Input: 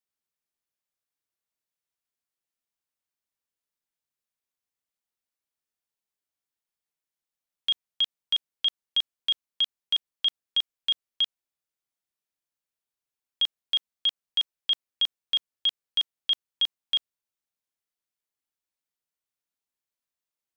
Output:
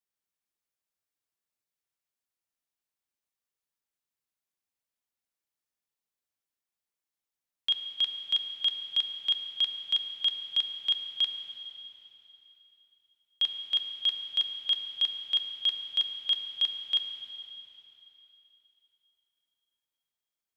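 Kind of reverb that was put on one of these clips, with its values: plate-style reverb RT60 3.3 s, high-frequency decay 0.95×, DRR 5 dB; gain -2.5 dB

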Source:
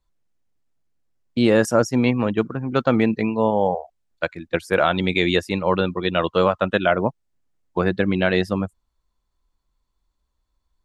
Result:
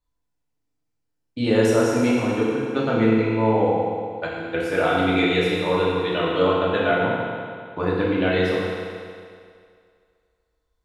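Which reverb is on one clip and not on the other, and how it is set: FDN reverb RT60 2.2 s, low-frequency decay 0.85×, high-frequency decay 0.95×, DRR -7 dB; gain -8.5 dB

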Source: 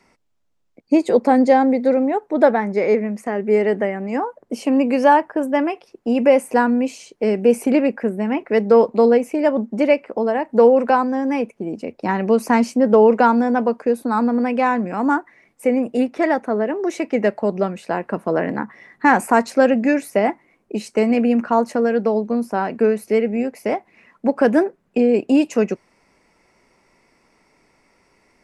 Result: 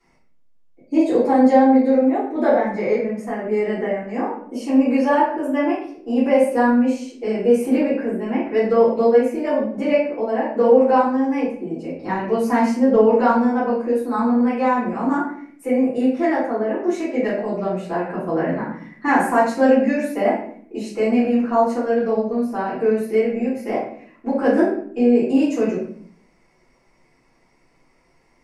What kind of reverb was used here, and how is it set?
shoebox room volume 86 m³, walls mixed, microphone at 3.3 m; gain -15 dB

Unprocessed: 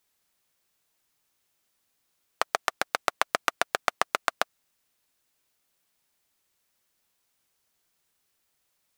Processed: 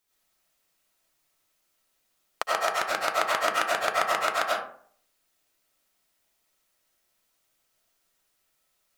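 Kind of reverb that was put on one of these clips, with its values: digital reverb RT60 0.56 s, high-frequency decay 0.5×, pre-delay 55 ms, DRR -6 dB; gain -4 dB

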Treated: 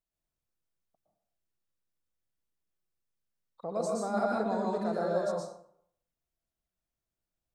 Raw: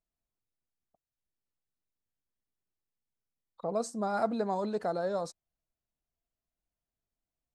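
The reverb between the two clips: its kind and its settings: plate-style reverb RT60 0.65 s, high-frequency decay 0.6×, pre-delay 0.105 s, DRR -2.5 dB; gain -3.5 dB

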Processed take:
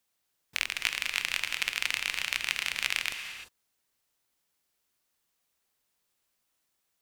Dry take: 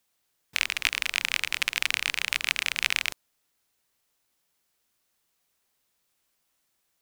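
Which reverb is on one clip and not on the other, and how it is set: non-linear reverb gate 0.37 s rising, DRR 8 dB; gain -4 dB

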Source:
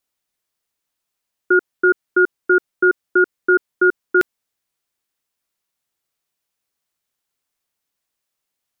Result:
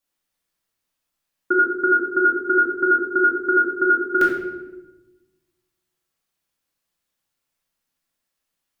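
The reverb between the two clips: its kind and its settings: shoebox room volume 490 m³, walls mixed, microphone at 2.3 m; gain -5 dB

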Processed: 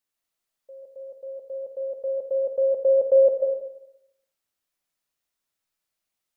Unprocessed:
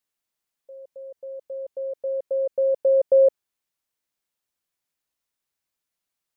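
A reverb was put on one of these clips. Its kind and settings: digital reverb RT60 0.83 s, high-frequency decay 0.9×, pre-delay 0.1 s, DRR 0.5 dB; gain -1.5 dB

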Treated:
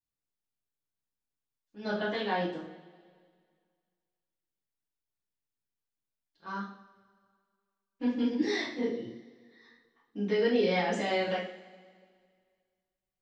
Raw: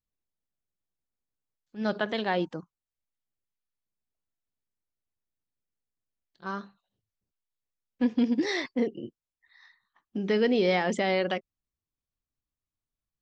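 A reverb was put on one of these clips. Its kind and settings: two-slope reverb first 0.48 s, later 2 s, from -19 dB, DRR -9 dB; gain -12 dB

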